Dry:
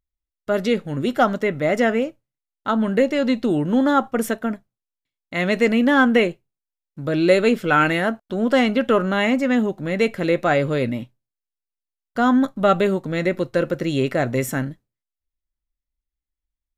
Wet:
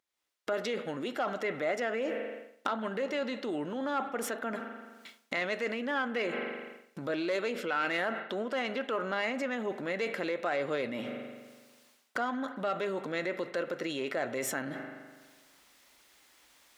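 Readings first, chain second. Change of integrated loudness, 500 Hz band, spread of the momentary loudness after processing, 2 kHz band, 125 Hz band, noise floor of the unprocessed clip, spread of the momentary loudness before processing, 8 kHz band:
-14.0 dB, -12.5 dB, 10 LU, -10.5 dB, -21.0 dB, under -85 dBFS, 9 LU, -6.5 dB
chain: self-modulated delay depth 0.054 ms; recorder AGC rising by 43 dB/s; spring tank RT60 1.4 s, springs 41 ms, chirp 55 ms, DRR 16.5 dB; hard clip -5.5 dBFS, distortion -24 dB; high shelf 9200 Hz -11 dB; reverse; compressor 12:1, threshold -27 dBFS, peak gain reduction 17.5 dB; reverse; limiter -28 dBFS, peak gain reduction 9.5 dB; Bessel high-pass 520 Hz, order 2; gain +7.5 dB

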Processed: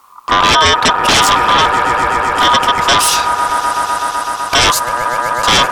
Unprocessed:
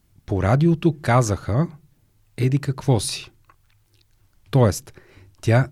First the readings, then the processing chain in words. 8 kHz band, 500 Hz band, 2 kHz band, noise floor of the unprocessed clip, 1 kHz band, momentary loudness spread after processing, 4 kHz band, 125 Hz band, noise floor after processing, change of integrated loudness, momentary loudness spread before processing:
+16.5 dB, +5.0 dB, +19.0 dB, -63 dBFS, +20.0 dB, 7 LU, +24.0 dB, -8.5 dB, -24 dBFS, +10.0 dB, 10 LU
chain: swelling echo 0.126 s, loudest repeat 5, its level -18 dB; ring modulator 1100 Hz; sine folder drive 15 dB, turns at -5.5 dBFS

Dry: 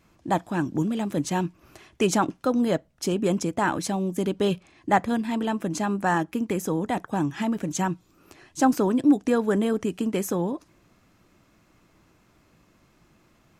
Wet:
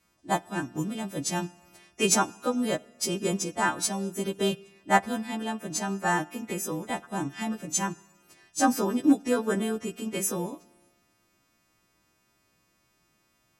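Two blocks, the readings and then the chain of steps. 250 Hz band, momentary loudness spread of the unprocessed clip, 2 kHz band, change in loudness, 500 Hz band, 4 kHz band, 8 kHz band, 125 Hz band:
-5.0 dB, 6 LU, +0.5 dB, -3.0 dB, -4.5 dB, +2.5 dB, +5.5 dB, -6.0 dB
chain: frequency quantiser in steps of 2 st; Schroeder reverb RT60 1.4 s, DRR 17 dB; upward expander 1.5:1, over -35 dBFS

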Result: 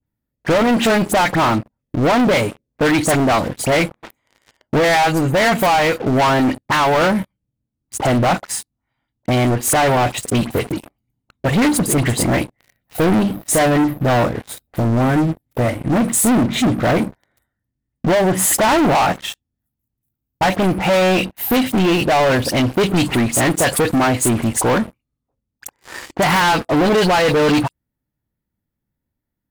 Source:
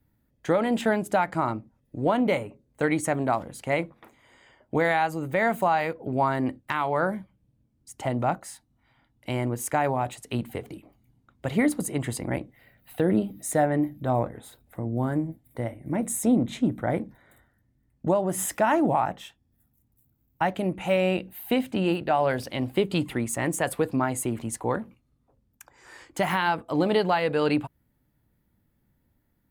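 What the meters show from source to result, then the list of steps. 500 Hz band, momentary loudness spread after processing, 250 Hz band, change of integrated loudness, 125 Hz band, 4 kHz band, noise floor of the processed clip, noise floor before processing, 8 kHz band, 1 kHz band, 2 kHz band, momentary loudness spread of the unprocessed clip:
+9.0 dB, 10 LU, +10.0 dB, +10.0 dB, +11.0 dB, +15.5 dB, -80 dBFS, -70 dBFS, +14.0 dB, +9.5 dB, +11.5 dB, 12 LU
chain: dispersion highs, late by 60 ms, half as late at 2500 Hz; sample leveller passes 5

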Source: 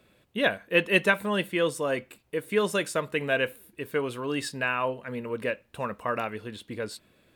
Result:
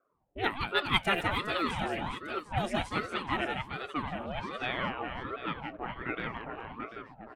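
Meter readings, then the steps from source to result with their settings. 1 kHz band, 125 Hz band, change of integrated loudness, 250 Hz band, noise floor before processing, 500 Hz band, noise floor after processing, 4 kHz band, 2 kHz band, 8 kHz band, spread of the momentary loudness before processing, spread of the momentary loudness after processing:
+0.5 dB, -1.5 dB, -5.0 dB, -5.0 dB, -65 dBFS, -10.0 dB, -60 dBFS, -0.5 dB, -5.5 dB, -12.5 dB, 13 LU, 12 LU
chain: low-pass opened by the level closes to 400 Hz, open at -20 dBFS; HPF 270 Hz 12 dB/oct; on a send: reverse bouncing-ball echo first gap 0.17 s, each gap 1.4×, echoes 5; on the sum: ring modulator with a swept carrier 540 Hz, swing 70%, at 1.3 Hz; gain -3.5 dB

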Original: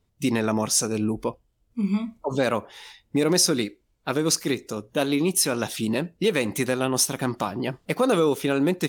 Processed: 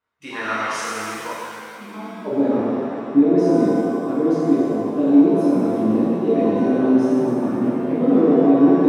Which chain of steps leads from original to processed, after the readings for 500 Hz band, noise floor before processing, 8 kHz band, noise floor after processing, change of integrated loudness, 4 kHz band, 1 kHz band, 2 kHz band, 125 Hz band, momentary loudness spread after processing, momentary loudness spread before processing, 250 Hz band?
+5.5 dB, -69 dBFS, under -10 dB, -36 dBFS, +6.0 dB, under -10 dB, +4.5 dB, 0.0 dB, +0.5 dB, 15 LU, 9 LU, +9.5 dB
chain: band-pass sweep 1400 Hz -> 270 Hz, 1.79–2.41; shimmer reverb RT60 2.3 s, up +7 st, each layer -8 dB, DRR -9 dB; gain +2.5 dB

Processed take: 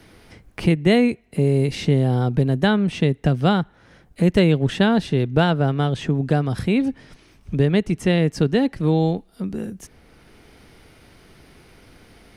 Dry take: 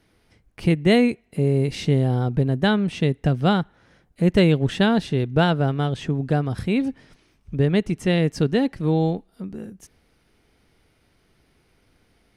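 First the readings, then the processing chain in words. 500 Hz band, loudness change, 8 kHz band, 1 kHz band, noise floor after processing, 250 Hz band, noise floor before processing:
+1.5 dB, +1.5 dB, n/a, +1.0 dB, -54 dBFS, +1.5 dB, -63 dBFS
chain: three-band squash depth 40%; gain +1.5 dB

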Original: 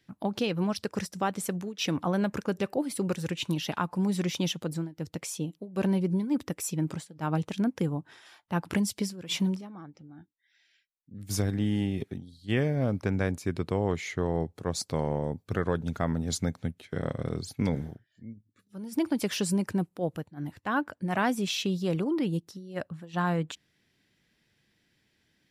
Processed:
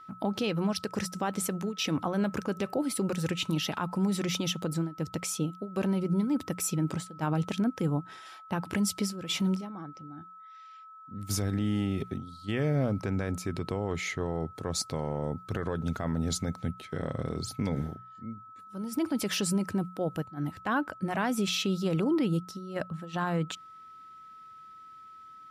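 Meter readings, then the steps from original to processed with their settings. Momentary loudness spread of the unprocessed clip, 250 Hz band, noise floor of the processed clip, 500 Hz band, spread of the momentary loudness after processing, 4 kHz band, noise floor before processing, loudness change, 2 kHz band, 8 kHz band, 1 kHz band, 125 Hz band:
10 LU, -0.5 dB, -50 dBFS, -1.5 dB, 17 LU, +1.0 dB, -73 dBFS, -0.5 dB, -1.0 dB, +2.0 dB, -0.5 dB, -0.5 dB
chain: limiter -23.5 dBFS, peak gain reduction 10 dB; notches 60/120/180 Hz; whine 1300 Hz -50 dBFS; gain +3 dB

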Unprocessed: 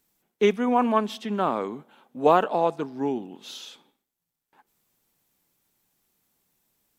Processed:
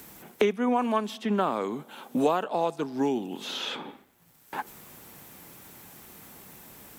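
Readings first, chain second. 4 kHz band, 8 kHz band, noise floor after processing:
+2.5 dB, +3.0 dB, -59 dBFS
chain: HPF 43 Hz; high shelf 4500 Hz +9.5 dB; three-band squash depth 100%; gain -3.5 dB

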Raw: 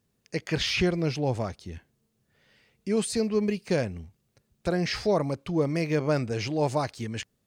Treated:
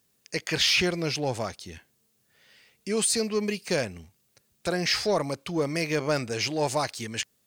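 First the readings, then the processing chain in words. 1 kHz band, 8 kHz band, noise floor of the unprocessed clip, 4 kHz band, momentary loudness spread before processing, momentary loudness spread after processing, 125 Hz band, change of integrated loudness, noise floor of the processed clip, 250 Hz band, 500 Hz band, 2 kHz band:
+1.5 dB, +9.0 dB, -75 dBFS, +6.5 dB, 10 LU, 12 LU, -4.5 dB, +1.0 dB, -70 dBFS, -3.0 dB, -1.0 dB, +4.5 dB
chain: tilt +2.5 dB/oct; in parallel at -9.5 dB: hard clip -26.5 dBFS, distortion -9 dB

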